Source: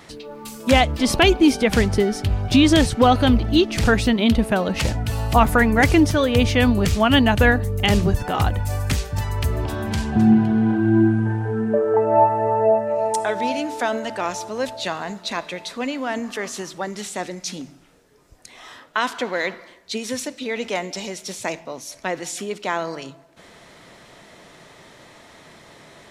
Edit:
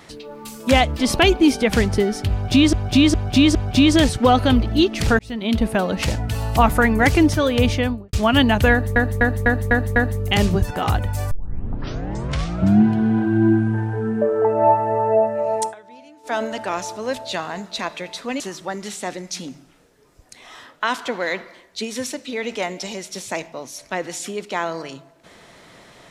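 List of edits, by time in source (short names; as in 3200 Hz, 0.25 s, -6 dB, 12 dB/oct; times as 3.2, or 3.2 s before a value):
2.32–2.73 loop, 4 plays
3.96–4.43 fade in
6.43–6.9 studio fade out
7.48–7.73 loop, 6 plays
8.83 tape start 1.53 s
13.15–13.87 dip -21 dB, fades 0.12 s
15.92–16.53 cut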